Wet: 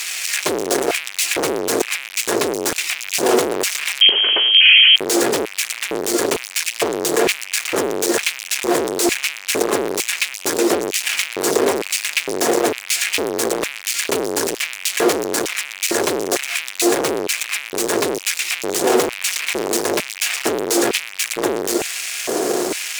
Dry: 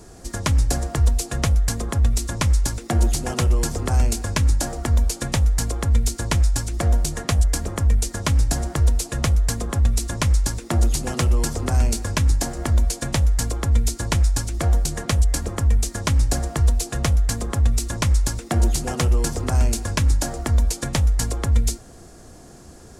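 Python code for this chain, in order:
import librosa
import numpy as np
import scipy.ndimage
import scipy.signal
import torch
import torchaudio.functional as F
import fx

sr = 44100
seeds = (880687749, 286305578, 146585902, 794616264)

y = fx.fuzz(x, sr, gain_db=48.0, gate_db=-48.0)
y = fx.freq_invert(y, sr, carrier_hz=3200, at=(4.01, 4.96))
y = fx.filter_lfo_highpass(y, sr, shape='square', hz=1.1, low_hz=400.0, high_hz=2400.0, q=3.6)
y = y * 10.0 ** (-3.0 / 20.0)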